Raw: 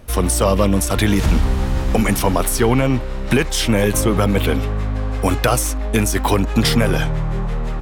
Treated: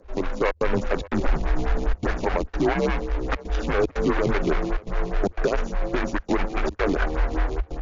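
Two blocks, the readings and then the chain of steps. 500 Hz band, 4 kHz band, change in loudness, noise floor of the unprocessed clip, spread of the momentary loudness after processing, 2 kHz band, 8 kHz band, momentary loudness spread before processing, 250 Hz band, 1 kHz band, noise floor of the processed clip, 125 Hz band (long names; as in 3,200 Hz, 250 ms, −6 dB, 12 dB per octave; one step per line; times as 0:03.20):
−5.0 dB, −15.0 dB, −8.0 dB, −23 dBFS, 5 LU, −5.5 dB, −24.0 dB, 7 LU, −8.5 dB, −6.0 dB, −46 dBFS, −12.0 dB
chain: running median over 41 samples
parametric band 140 Hz −15 dB 2 octaves
gate pattern "xxxxx.xxxx.xxx" 148 BPM −60 dB
linear-phase brick-wall low-pass 7,300 Hz
on a send: feedback echo with a high-pass in the loop 565 ms, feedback 29%, high-pass 200 Hz, level −24 dB
on the sum: dynamic equaliser 1,700 Hz, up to +5 dB, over −46 dBFS, Q 1.3
automatic gain control gain up to 7 dB
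frequency shifter −81 Hz
brickwall limiter −12 dBFS, peak gain reduction 7.5 dB
phaser with staggered stages 4.9 Hz
level +2.5 dB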